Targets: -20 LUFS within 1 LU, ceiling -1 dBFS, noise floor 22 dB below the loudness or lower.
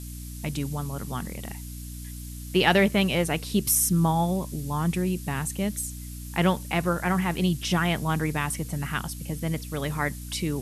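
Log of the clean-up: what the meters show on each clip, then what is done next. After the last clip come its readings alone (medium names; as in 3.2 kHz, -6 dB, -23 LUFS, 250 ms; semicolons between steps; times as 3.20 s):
hum 60 Hz; highest harmonic 300 Hz; hum level -36 dBFS; noise floor -38 dBFS; noise floor target -48 dBFS; loudness -26.0 LUFS; peak level -5.5 dBFS; loudness target -20.0 LUFS
-> hum notches 60/120/180/240/300 Hz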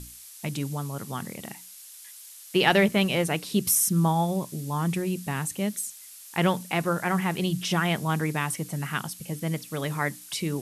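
hum not found; noise floor -46 dBFS; noise floor target -49 dBFS
-> noise print and reduce 6 dB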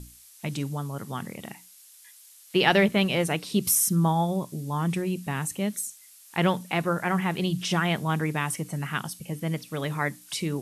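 noise floor -52 dBFS; loudness -26.5 LUFS; peak level -5.0 dBFS; loudness target -20.0 LUFS
-> trim +6.5 dB; peak limiter -1 dBFS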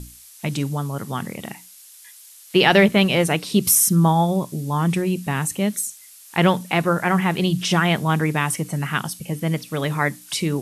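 loudness -20.5 LUFS; peak level -1.0 dBFS; noise floor -46 dBFS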